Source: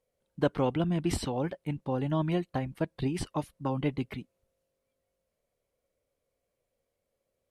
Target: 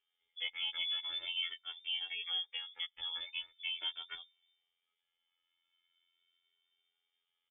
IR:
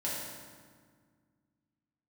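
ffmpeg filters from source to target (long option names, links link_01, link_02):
-filter_complex "[0:a]equalizer=frequency=1400:width=5.2:gain=14.5,afftfilt=real='hypot(re,im)*cos(PI*b)':imag='0':win_size=2048:overlap=0.75,acompressor=threshold=-47dB:ratio=1.5,asplit=2[link_01][link_02];[link_02]alimiter=level_in=4dB:limit=-24dB:level=0:latency=1:release=155,volume=-4dB,volume=-1.5dB[link_03];[link_01][link_03]amix=inputs=2:normalize=0,aecho=1:1:2.2:0.55,lowpass=frequency=3100:width_type=q:width=0.5098,lowpass=frequency=3100:width_type=q:width=0.6013,lowpass=frequency=3100:width_type=q:width=0.9,lowpass=frequency=3100:width_type=q:width=2.563,afreqshift=-3600,asplit=2[link_04][link_05];[link_05]adelay=2.1,afreqshift=0.42[link_06];[link_04][link_06]amix=inputs=2:normalize=1,volume=-1dB"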